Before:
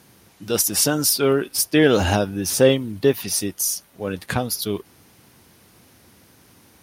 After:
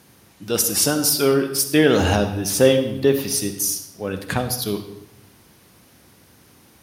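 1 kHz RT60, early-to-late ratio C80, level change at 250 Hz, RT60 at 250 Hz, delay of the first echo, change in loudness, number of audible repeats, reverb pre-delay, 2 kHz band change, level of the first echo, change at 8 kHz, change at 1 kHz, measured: 0.85 s, 11.0 dB, +1.0 dB, 1.1 s, no echo, +0.5 dB, no echo, 39 ms, +0.5 dB, no echo, +0.5 dB, +0.5 dB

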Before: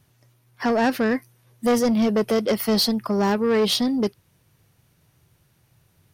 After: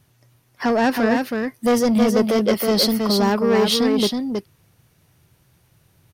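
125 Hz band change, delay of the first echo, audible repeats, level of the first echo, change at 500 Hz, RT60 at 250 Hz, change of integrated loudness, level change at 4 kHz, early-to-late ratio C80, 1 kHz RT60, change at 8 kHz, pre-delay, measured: +3.0 dB, 320 ms, 1, -4.5 dB, +3.0 dB, no reverb, +3.0 dB, +3.5 dB, no reverb, no reverb, +3.5 dB, no reverb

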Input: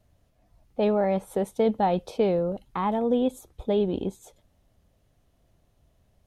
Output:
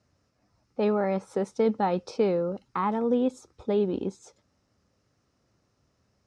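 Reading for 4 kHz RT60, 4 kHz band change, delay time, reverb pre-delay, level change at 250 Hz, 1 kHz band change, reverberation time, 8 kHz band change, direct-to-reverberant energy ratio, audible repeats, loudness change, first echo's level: no reverb, -3.5 dB, no echo, no reverb, -1.0 dB, -2.0 dB, no reverb, no reading, no reverb, no echo, -1.5 dB, no echo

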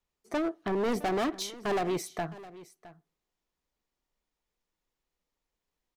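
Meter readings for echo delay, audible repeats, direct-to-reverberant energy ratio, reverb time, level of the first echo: 663 ms, 1, no reverb, no reverb, -18.0 dB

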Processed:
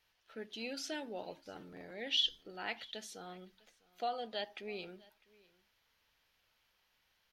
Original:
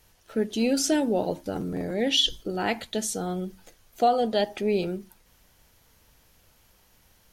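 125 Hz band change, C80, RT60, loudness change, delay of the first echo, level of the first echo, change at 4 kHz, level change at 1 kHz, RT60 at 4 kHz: -23.5 dB, no reverb, no reverb, -13.0 dB, 652 ms, -24.0 dB, -9.0 dB, -15.5 dB, no reverb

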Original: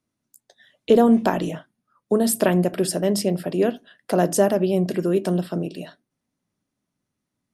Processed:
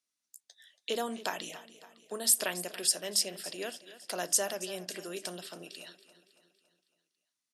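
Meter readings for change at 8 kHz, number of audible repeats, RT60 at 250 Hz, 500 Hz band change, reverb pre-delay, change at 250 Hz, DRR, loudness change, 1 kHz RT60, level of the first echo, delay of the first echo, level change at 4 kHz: +1.0 dB, 4, no reverb, -18.0 dB, no reverb, -24.5 dB, no reverb, -10.5 dB, no reverb, -16.0 dB, 280 ms, +0.5 dB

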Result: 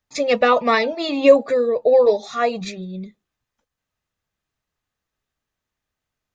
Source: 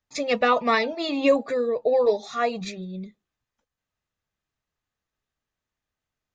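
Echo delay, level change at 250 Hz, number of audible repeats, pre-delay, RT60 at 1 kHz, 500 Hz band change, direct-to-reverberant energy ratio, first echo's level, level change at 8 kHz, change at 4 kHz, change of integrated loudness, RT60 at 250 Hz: no echo, +3.5 dB, no echo, no reverb, no reverb, +6.5 dB, no reverb, no echo, no reading, +3.5 dB, +6.0 dB, no reverb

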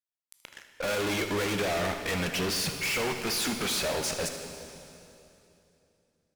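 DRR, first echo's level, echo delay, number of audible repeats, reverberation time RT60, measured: 5.0 dB, -14.5 dB, 77 ms, 1, 2.9 s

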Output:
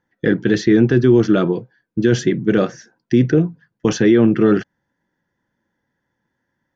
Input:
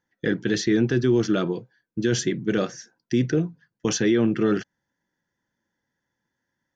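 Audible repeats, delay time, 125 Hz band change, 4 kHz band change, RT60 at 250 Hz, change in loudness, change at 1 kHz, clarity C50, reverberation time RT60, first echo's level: no echo, no echo, +8.0 dB, +1.0 dB, no reverb, +7.5 dB, +6.5 dB, no reverb, no reverb, no echo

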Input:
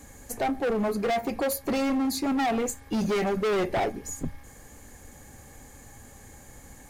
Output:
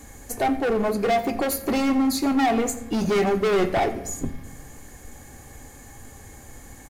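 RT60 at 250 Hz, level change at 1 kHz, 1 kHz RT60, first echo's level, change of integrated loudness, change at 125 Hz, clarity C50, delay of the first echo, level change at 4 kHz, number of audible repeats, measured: 1.8 s, +5.0 dB, 0.85 s, -18.5 dB, +4.5 dB, +4.0 dB, 13.5 dB, 88 ms, +4.0 dB, 1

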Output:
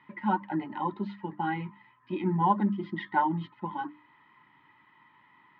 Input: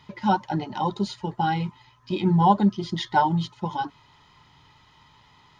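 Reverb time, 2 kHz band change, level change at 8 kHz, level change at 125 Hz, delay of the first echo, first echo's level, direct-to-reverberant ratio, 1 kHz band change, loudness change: no reverb, -3.5 dB, no reading, -9.0 dB, no echo, no echo, no reverb, -6.0 dB, -6.0 dB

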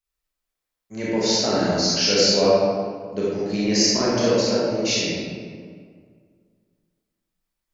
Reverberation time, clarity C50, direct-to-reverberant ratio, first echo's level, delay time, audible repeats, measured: 2.0 s, -4.0 dB, -8.5 dB, no echo, no echo, no echo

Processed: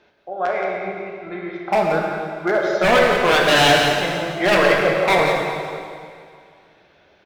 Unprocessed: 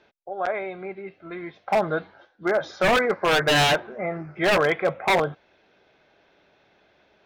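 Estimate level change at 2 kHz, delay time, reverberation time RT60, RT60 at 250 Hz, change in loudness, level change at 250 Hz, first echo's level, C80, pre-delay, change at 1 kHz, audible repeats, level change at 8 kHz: +6.0 dB, 174 ms, 2.2 s, 2.1 s, +5.5 dB, +6.0 dB, -7.5 dB, 1.0 dB, 4 ms, +6.0 dB, 1, +5.5 dB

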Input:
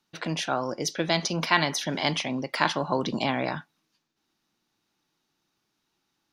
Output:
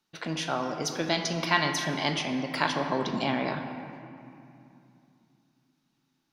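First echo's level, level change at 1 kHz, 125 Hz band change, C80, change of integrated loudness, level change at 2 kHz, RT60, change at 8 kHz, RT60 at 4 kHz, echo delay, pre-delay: no echo, -1.5 dB, -2.0 dB, 7.0 dB, -2.0 dB, -1.5 dB, 2.6 s, -2.5 dB, 1.6 s, no echo, 5 ms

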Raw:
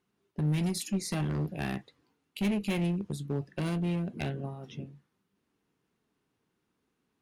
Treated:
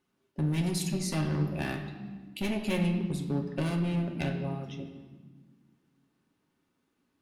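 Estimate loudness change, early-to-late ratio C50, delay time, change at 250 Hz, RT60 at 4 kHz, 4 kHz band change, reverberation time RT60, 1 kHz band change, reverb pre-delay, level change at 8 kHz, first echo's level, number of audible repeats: +1.0 dB, 7.0 dB, no echo, +1.0 dB, 1.1 s, +1.5 dB, 1.4 s, +1.5 dB, 3 ms, +1.0 dB, no echo, no echo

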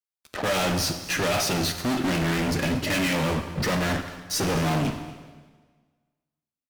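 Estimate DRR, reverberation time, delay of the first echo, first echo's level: 7.0 dB, 1.5 s, 234 ms, -18.0 dB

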